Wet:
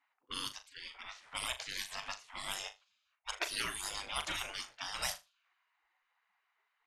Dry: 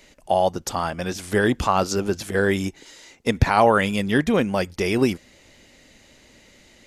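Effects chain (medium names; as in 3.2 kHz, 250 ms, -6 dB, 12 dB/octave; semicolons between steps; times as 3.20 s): level-controlled noise filter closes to 420 Hz, open at -14.5 dBFS; spectral gate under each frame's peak -30 dB weak; flutter echo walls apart 6.8 m, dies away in 0.22 s; trim +3 dB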